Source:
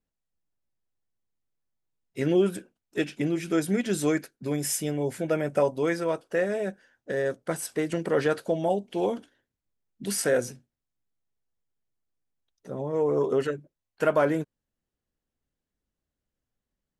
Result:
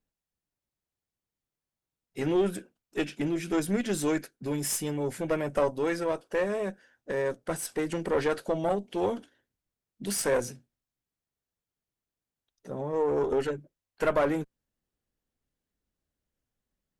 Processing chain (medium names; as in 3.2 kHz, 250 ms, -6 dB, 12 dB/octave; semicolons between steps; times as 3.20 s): single-diode clipper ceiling -23.5 dBFS